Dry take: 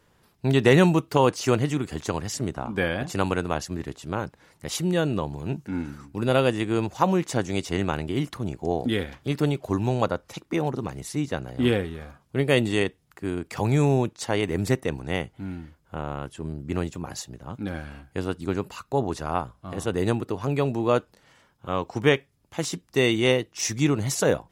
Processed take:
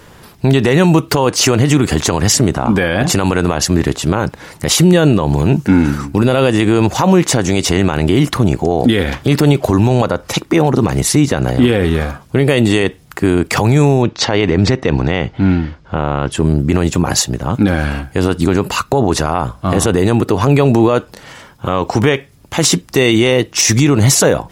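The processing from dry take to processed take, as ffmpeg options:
-filter_complex "[0:a]asettb=1/sr,asplit=3[s0][s1][s2];[s0]atrim=end=14.024[s3];[s1]atrim=start=14.02:end=16.32,asetpts=PTS-STARTPTS,afade=t=in:d=0.004:c=qsin,afade=t=out:st=2.296:d=0.004:c=qsin,lowpass=f=5400:w=0.5412,lowpass=f=5400:w=1.3066[s4];[s2]atrim=start=16.316[s5];[s3][s4]acrossfade=d=0.004:c1=hsin:c2=qsin[s6];[s6][s5]acrossfade=d=0.004:c1=qsin:c2=hsin,acompressor=threshold=0.0708:ratio=4,alimiter=level_in=14.1:limit=0.891:release=50:level=0:latency=1,volume=0.891"

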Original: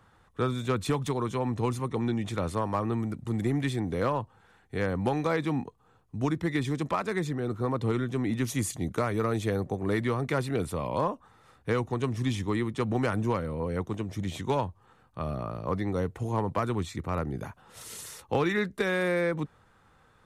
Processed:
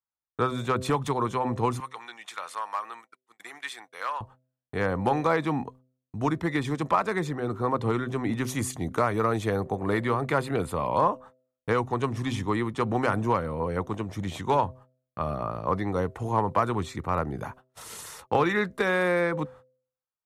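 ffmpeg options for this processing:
-filter_complex "[0:a]asettb=1/sr,asplit=3[s0][s1][s2];[s0]atrim=end=1.804[s3];[s1]atrim=start=1.8:end=4.21,asetpts=PTS-STARTPTS,afade=t=in:d=0.004:c=qsin,afade=t=out:st=2.406:d=0.004:c=qsin,highpass=1400[s4];[s2]atrim=start=4.206[s5];[s3][s4]acrossfade=d=0.004:c1=hsin:c2=qsin[s6];[s6][s5]acrossfade=d=0.004:c1=qsin:c2=hsin,asettb=1/sr,asplit=3[s7][s8][s9];[s7]atrim=end=9.644[s10];[s8]atrim=start=9.64:end=10.96,asetpts=PTS-STARTPTS,afade=t=in:d=0.004:c=qsin,afade=t=out:st=1.316:d=0.004:c=qsin,bandreject=f=5700:w=8.2[s11];[s9]atrim=start=10.956[s12];[s10][s11]acrossfade=d=0.004:c1=hsin:c2=qsin[s13];[s13][s12]acrossfade=d=0.004:c1=qsin:c2=hsin,agate=range=0.00501:threshold=0.00355:ratio=16:detection=peak,equalizer=f=980:t=o:w=1.6:g=7.5,bandreject=f=128.3:t=h:w=4,bandreject=f=256.6:t=h:w=4,bandreject=f=384.9:t=h:w=4,bandreject=f=513.2:t=h:w=4,bandreject=f=641.5:t=h:w=4"

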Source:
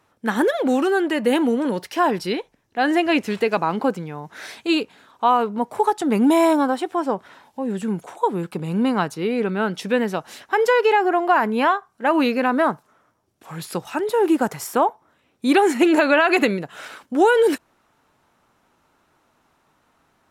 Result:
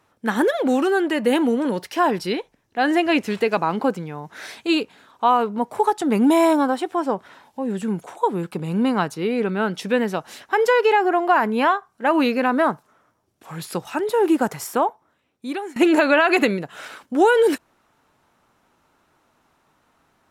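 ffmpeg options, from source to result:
-filter_complex "[0:a]asplit=2[s0][s1];[s0]atrim=end=15.76,asetpts=PTS-STARTPTS,afade=t=out:st=14.59:d=1.17:silence=0.0891251[s2];[s1]atrim=start=15.76,asetpts=PTS-STARTPTS,afade=t=in:d=0.004:c=hsin:silence=0.0891251[s3];[s2][s3]concat=n=2:v=0:a=1"

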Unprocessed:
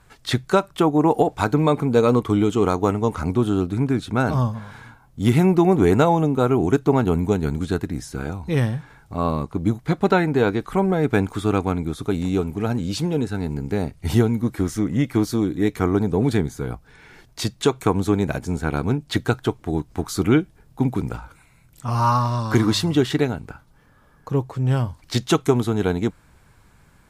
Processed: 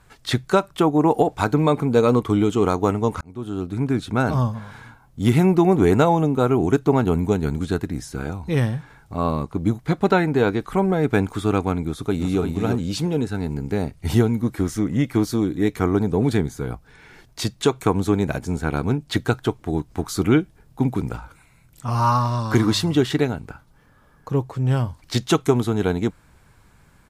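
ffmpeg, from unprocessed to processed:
-filter_complex "[0:a]asplit=2[s0][s1];[s1]afade=t=in:st=11.83:d=0.01,afade=t=out:st=12.41:d=0.01,aecho=0:1:340|680:0.562341|0.0562341[s2];[s0][s2]amix=inputs=2:normalize=0,asplit=2[s3][s4];[s3]atrim=end=3.21,asetpts=PTS-STARTPTS,afade=t=out:st=3.206:d=0.004:c=hsin[s5];[s4]atrim=start=3.21,asetpts=PTS-STARTPTS,afade=t=in:d=0.75[s6];[s5][s6]concat=n=2:v=0:a=1"

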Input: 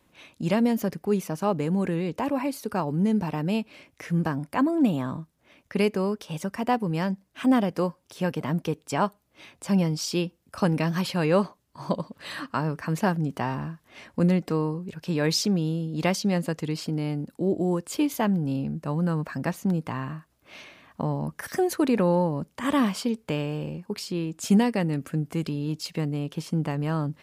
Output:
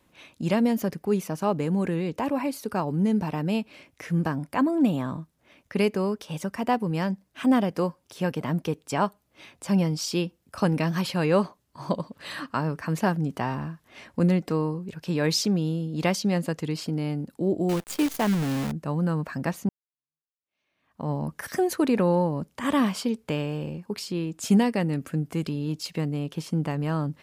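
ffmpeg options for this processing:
-filter_complex "[0:a]asettb=1/sr,asplit=3[s0][s1][s2];[s0]atrim=end=17.694[s3];[s1]atrim=start=17.69:end=18.72,asetpts=PTS-STARTPTS,afade=t=in:d=0.004:c=qsin,afade=t=out:st=1.026:d=0.004:c=qsin,acrusher=bits=6:dc=4:mix=0:aa=0.000001[s4];[s2]atrim=start=18.716[s5];[s3][s4]acrossfade=d=0.004:c1=hsin:c2=qsin[s6];[s6][s5]acrossfade=d=0.004:c1=qsin:c2=hsin,asplit=2[s7][s8];[s7]atrim=end=19.69,asetpts=PTS-STARTPTS,afade=t=out:st=19.686:d=0.004:c=hsin[s9];[s8]atrim=start=19.69,asetpts=PTS-STARTPTS,afade=t=in:d=1.41:c=exp[s10];[s9][s10]concat=n=2:v=0:a=1"

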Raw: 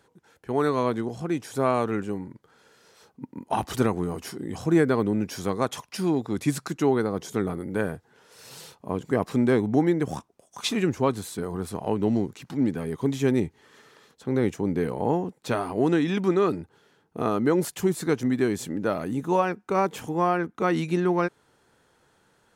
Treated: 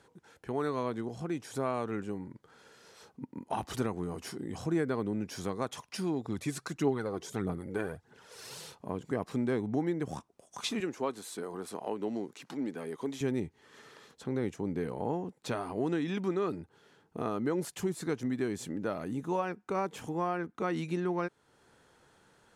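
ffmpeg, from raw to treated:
-filter_complex "[0:a]asettb=1/sr,asplit=3[s0][s1][s2];[s0]atrim=end=6.254[s3];[s1]atrim=start=6.25:end=8.58,asetpts=PTS-STARTPTS,afade=t=in:d=0.004:c=qsin,afade=t=out:st=2.326:d=0.004:c=qsin,aphaser=in_gain=1:out_gain=1:delay=3:decay=0.5:speed=1.6:type=triangular[s4];[s2]atrim=start=8.576[s5];[s3][s4]acrossfade=d=0.004:c1=hsin:c2=qsin[s6];[s6][s5]acrossfade=d=0.004:c1=qsin:c2=hsin,asettb=1/sr,asplit=3[s7][s8][s9];[s7]atrim=end=10.804[s10];[s8]atrim=start=10.8:end=13.21,asetpts=PTS-STARTPTS,afade=t=in:d=0.004:c=qsin,afade=t=out:st=2.406:d=0.004:c=qsin,highpass=290[s11];[s9]atrim=start=13.206[s12];[s10][s11]acrossfade=d=0.004:c1=hsin:c2=qsin[s13];[s13][s12]acrossfade=d=0.004:c1=qsin:c2=hsin,acompressor=threshold=0.00562:ratio=1.5,lowpass=12000"

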